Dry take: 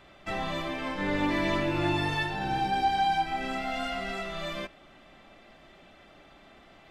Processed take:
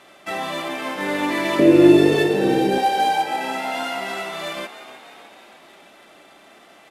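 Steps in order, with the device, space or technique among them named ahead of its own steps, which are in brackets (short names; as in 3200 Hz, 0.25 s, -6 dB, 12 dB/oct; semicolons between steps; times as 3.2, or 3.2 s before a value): early wireless headset (HPF 260 Hz 12 dB/oct; CVSD 64 kbps); 1.59–2.78 resonant low shelf 630 Hz +10.5 dB, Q 3; frequency-shifting echo 0.306 s, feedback 56%, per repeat +59 Hz, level -13 dB; gain +6.5 dB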